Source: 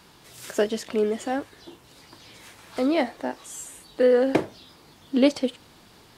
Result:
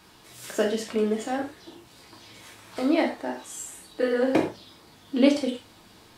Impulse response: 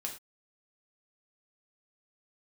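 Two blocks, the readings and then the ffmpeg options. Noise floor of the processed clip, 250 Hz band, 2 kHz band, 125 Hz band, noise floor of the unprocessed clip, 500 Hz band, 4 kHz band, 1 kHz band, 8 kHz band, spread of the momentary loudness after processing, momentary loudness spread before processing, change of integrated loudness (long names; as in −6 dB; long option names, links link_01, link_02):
−54 dBFS, +0.5 dB, +0.5 dB, 0.0 dB, −53 dBFS, −3.0 dB, 0.0 dB, −0.5 dB, +0.5 dB, 18 LU, 17 LU, −1.5 dB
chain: -filter_complex "[1:a]atrim=start_sample=2205[link_01];[0:a][link_01]afir=irnorm=-1:irlink=0"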